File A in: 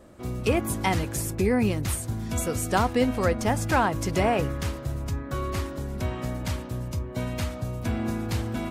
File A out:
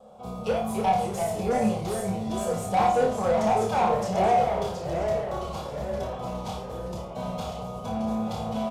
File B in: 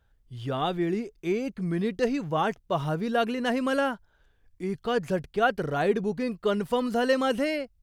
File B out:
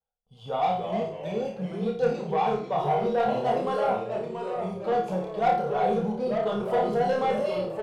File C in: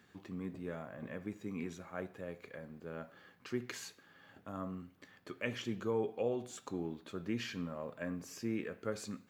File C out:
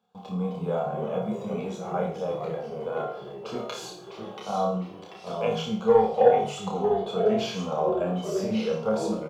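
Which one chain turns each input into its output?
gate with hold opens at -53 dBFS; in parallel at +2.5 dB: level held to a coarse grid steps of 11 dB; on the sum: static phaser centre 770 Hz, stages 4; flange 1.1 Hz, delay 5 ms, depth 9.5 ms, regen -73%; feedback comb 66 Hz, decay 0.39 s, harmonics all, mix 60%; overload inside the chain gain 22.5 dB; small resonant body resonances 210/470/760/3400 Hz, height 14 dB, ringing for 65 ms; overdrive pedal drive 19 dB, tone 2 kHz, clips at -10.5 dBFS; doubling 33 ms -10.5 dB; on a send: flutter echo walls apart 4.7 m, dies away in 0.39 s; on the sum: ever faster or slower copies 230 ms, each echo -2 st, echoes 3, each echo -6 dB; normalise loudness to -27 LUFS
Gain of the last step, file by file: -6.5 dB, -6.0 dB, +6.5 dB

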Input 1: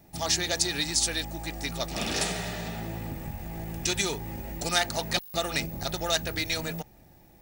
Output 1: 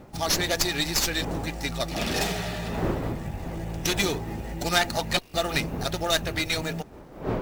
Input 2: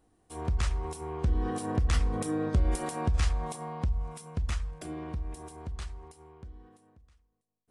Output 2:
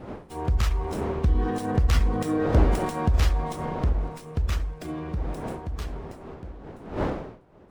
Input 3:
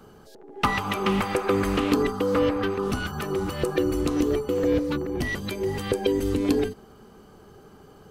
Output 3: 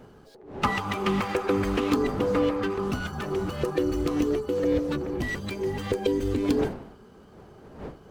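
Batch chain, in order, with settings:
coarse spectral quantiser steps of 15 dB; wind noise 500 Hz -41 dBFS; treble shelf 11 kHz -5.5 dB; sliding maximum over 3 samples; normalise loudness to -27 LUFS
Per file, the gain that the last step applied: +3.5 dB, +5.5 dB, -1.5 dB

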